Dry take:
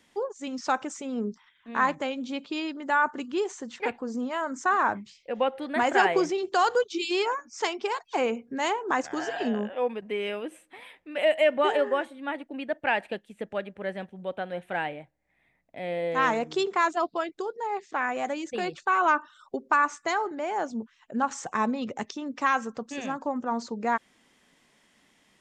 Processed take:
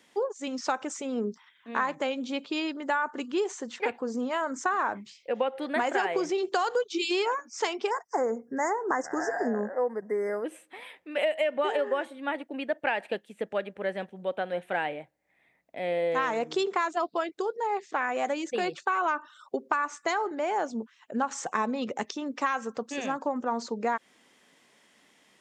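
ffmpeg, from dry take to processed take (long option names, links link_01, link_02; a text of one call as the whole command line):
ffmpeg -i in.wav -filter_complex "[0:a]asplit=3[link_01][link_02][link_03];[link_01]afade=type=out:start_time=7.89:duration=0.02[link_04];[link_02]asuperstop=centerf=3200:order=20:qfactor=1.1,afade=type=in:start_time=7.89:duration=0.02,afade=type=out:start_time=10.44:duration=0.02[link_05];[link_03]afade=type=in:start_time=10.44:duration=0.02[link_06];[link_04][link_05][link_06]amix=inputs=3:normalize=0,highpass=frequency=240:poles=1,equalizer=frequency=470:width_type=o:width=0.77:gain=2.5,acompressor=threshold=-25dB:ratio=10,volume=2dB" out.wav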